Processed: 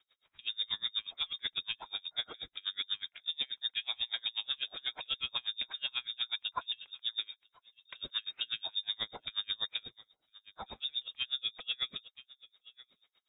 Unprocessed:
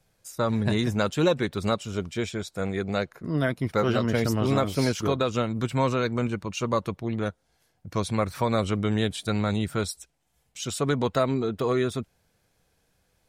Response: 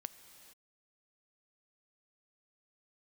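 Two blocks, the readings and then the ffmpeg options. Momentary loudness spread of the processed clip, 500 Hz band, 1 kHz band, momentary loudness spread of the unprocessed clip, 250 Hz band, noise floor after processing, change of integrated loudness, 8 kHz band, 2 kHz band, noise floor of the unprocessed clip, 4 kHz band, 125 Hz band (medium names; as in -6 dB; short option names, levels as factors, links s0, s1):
14 LU, -32.5 dB, -17.5 dB, 8 LU, -37.0 dB, -84 dBFS, -9.0 dB, under -40 dB, -9.5 dB, -71 dBFS, +4.5 dB, under -35 dB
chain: -filter_complex "[0:a]asplit=2[s0][s1];[1:a]atrim=start_sample=2205,atrim=end_sample=3528[s2];[s1][s2]afir=irnorm=-1:irlink=0,volume=1.41[s3];[s0][s3]amix=inputs=2:normalize=0,acompressor=threshold=0.0891:ratio=2,highshelf=f=2800:g=7.5,aecho=1:1:1005:0.0668,lowpass=f=3200:t=q:w=0.5098,lowpass=f=3200:t=q:w=0.6013,lowpass=f=3200:t=q:w=0.9,lowpass=f=3200:t=q:w=2.563,afreqshift=-3800,alimiter=limit=0.141:level=0:latency=1:release=13,aeval=exprs='val(0)*pow(10,-34*(0.5-0.5*cos(2*PI*8.2*n/s))/20)':c=same,volume=0.531"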